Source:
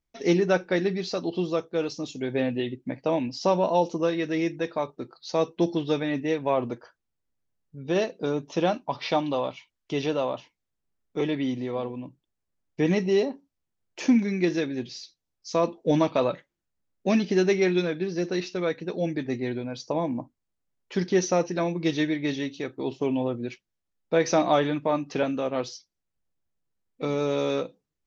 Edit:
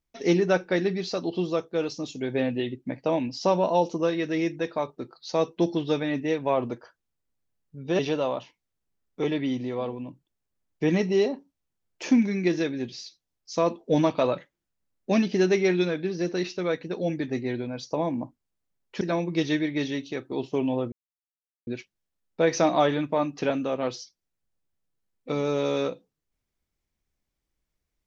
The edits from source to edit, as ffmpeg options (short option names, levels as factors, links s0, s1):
-filter_complex "[0:a]asplit=4[s0][s1][s2][s3];[s0]atrim=end=7.992[s4];[s1]atrim=start=9.958:end=20.982[s5];[s2]atrim=start=21.488:end=23.4,asetpts=PTS-STARTPTS,afade=t=out:st=1.908:d=0.004:c=hsin,apad=pad_dur=0.75[s6];[s3]atrim=start=23.4,asetpts=PTS-STARTPTS,afade=t=in:d=0.004:c=hsin[s7];[s4][s5]acrossfade=d=0.004:c1=hsin:c2=hsin[s8];[s6][s7]concat=n=2:v=0:a=1[s9];[s8][s9]acrossfade=d=0.004:c1=hsin:c2=hsin"